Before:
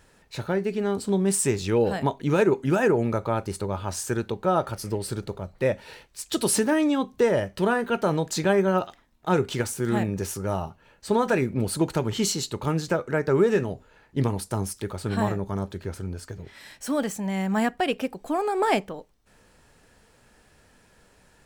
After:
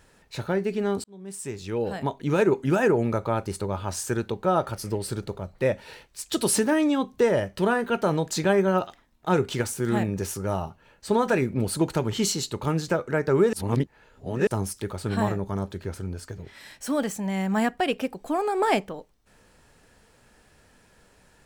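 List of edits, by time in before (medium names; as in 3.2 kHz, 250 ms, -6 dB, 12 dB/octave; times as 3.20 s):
1.04–2.53 s: fade in
13.53–14.47 s: reverse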